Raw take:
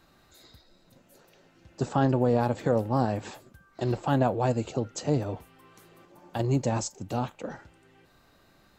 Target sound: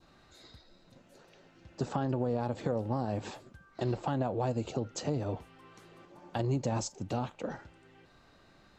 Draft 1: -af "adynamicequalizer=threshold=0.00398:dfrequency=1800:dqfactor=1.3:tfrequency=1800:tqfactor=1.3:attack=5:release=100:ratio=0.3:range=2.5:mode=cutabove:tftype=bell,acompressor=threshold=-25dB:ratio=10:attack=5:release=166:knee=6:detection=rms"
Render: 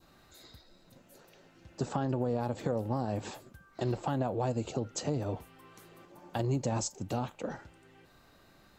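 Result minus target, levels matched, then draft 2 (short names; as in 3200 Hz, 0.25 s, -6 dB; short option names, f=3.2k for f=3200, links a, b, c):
8000 Hz band +3.5 dB
-af "adynamicequalizer=threshold=0.00398:dfrequency=1800:dqfactor=1.3:tfrequency=1800:tqfactor=1.3:attack=5:release=100:ratio=0.3:range=2.5:mode=cutabove:tftype=bell,acompressor=threshold=-25dB:ratio=10:attack=5:release=166:knee=6:detection=rms,lowpass=6.5k"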